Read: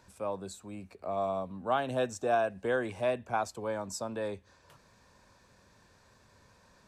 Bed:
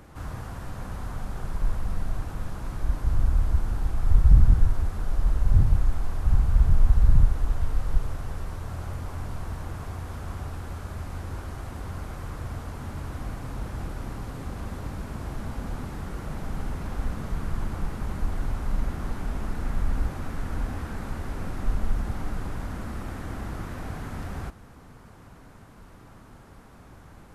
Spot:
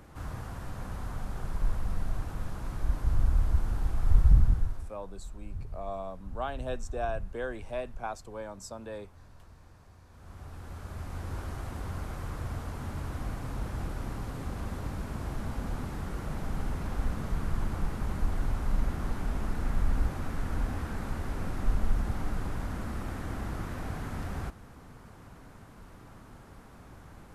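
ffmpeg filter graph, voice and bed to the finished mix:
-filter_complex "[0:a]adelay=4700,volume=0.531[s0];[1:a]volume=6.31,afade=t=out:st=4.19:d=0.76:silence=0.133352,afade=t=in:st=10.1:d=1.32:silence=0.112202[s1];[s0][s1]amix=inputs=2:normalize=0"

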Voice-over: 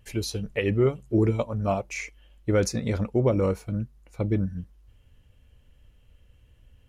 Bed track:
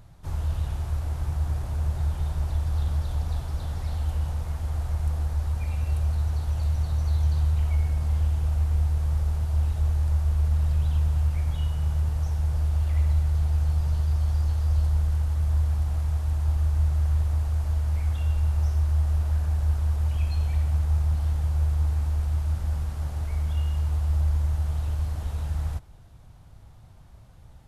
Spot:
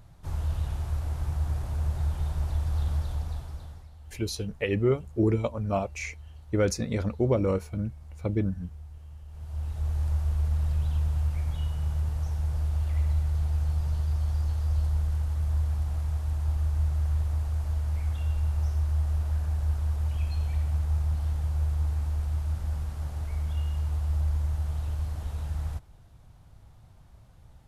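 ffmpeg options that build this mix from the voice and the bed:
-filter_complex "[0:a]adelay=4050,volume=0.794[s0];[1:a]volume=5.62,afade=t=out:st=2.97:d=0.92:silence=0.11885,afade=t=in:st=9.28:d=0.75:silence=0.141254[s1];[s0][s1]amix=inputs=2:normalize=0"

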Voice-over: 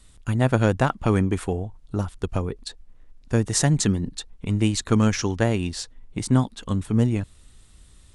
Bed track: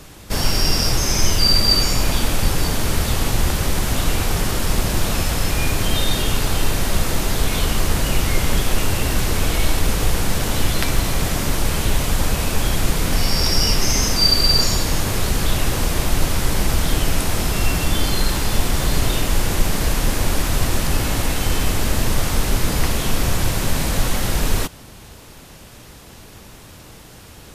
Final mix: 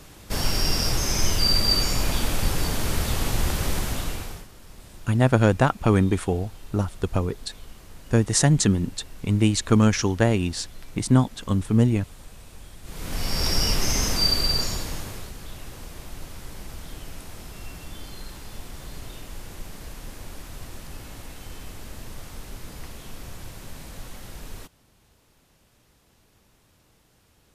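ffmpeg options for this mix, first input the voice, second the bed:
-filter_complex "[0:a]adelay=4800,volume=1.19[s0];[1:a]volume=6.31,afade=t=out:st=3.73:d=0.74:silence=0.0841395,afade=t=in:st=12.83:d=0.65:silence=0.0841395,afade=t=out:st=14.16:d=1.17:silence=0.188365[s1];[s0][s1]amix=inputs=2:normalize=0"

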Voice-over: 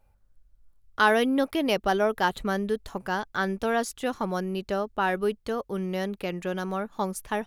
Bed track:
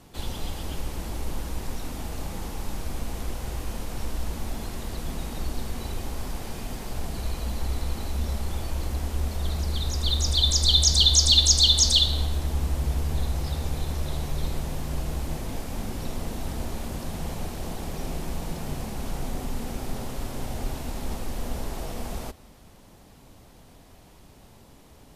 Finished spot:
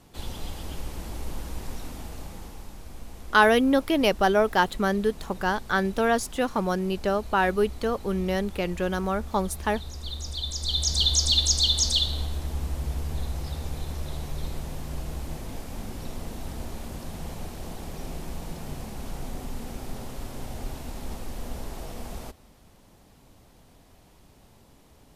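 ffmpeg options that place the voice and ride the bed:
-filter_complex "[0:a]adelay=2350,volume=1.41[s0];[1:a]volume=1.5,afade=t=out:st=1.77:d=0.97:silence=0.421697,afade=t=in:st=10.55:d=0.5:silence=0.473151[s1];[s0][s1]amix=inputs=2:normalize=0"

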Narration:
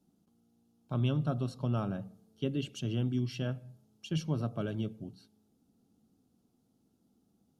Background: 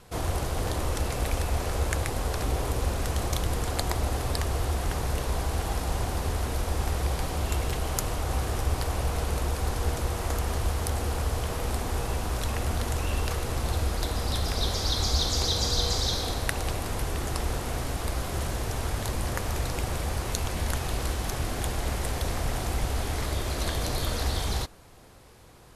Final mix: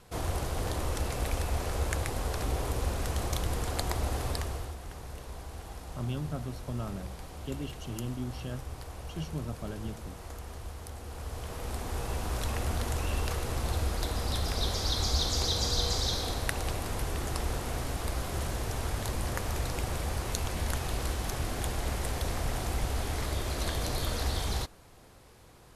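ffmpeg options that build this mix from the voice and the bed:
-filter_complex "[0:a]adelay=5050,volume=0.596[s0];[1:a]volume=2.37,afade=t=out:st=4.27:d=0.49:silence=0.298538,afade=t=in:st=11.04:d=1.33:silence=0.281838[s1];[s0][s1]amix=inputs=2:normalize=0"

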